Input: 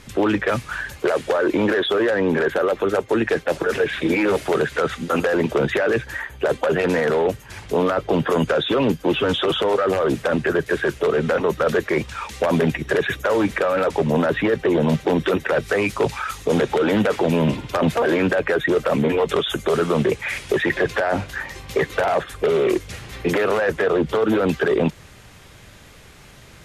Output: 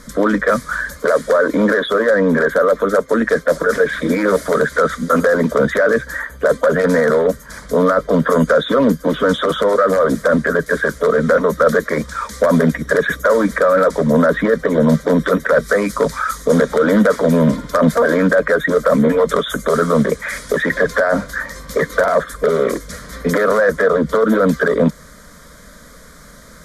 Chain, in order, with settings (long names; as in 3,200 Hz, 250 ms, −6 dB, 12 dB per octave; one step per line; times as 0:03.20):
phaser with its sweep stopped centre 540 Hz, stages 8
level +8 dB